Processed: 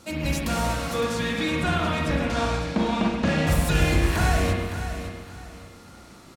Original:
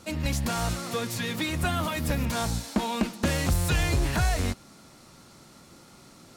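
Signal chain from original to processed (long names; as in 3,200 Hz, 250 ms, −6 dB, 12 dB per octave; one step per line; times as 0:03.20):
loose part that buzzes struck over −25 dBFS, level −32 dBFS
0:01.00–0:03.46: low-pass filter 8,200 Hz → 4,400 Hz 12 dB per octave
repeating echo 561 ms, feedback 29%, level −10.5 dB
spring reverb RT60 1.2 s, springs 32/41/47 ms, chirp 45 ms, DRR −2 dB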